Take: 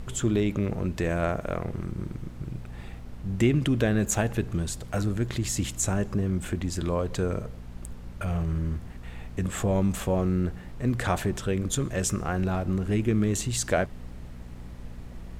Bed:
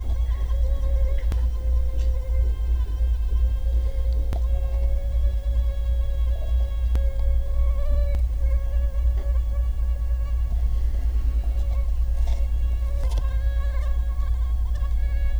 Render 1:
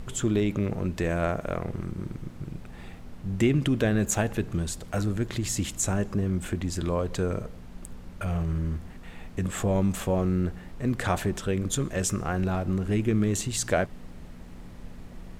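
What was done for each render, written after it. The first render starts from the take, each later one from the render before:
hum removal 60 Hz, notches 2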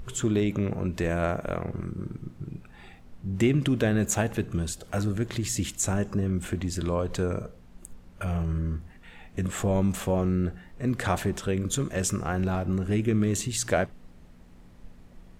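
noise reduction from a noise print 8 dB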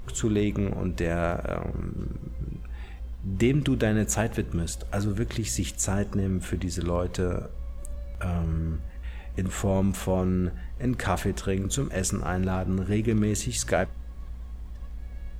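mix in bed −15 dB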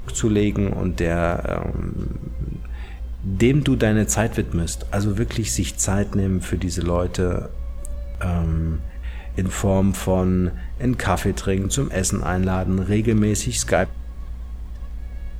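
level +6 dB

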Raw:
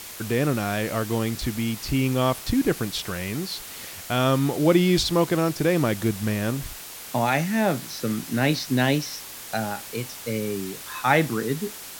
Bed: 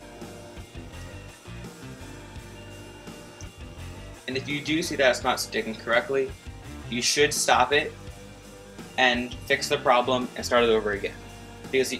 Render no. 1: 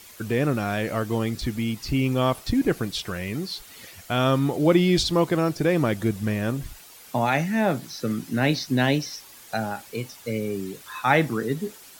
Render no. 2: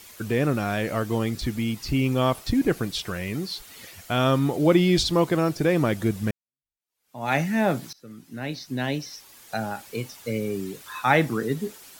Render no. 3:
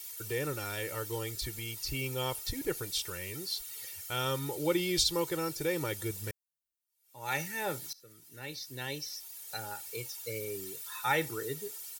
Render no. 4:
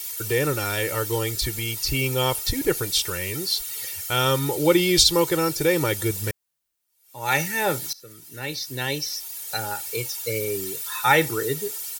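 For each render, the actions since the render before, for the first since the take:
broadband denoise 10 dB, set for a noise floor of −39 dBFS
0:06.31–0:07.32: fade in exponential; 0:07.93–0:09.96: fade in linear, from −23 dB
first-order pre-emphasis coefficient 0.8; comb filter 2.2 ms, depth 78%
level +11.5 dB

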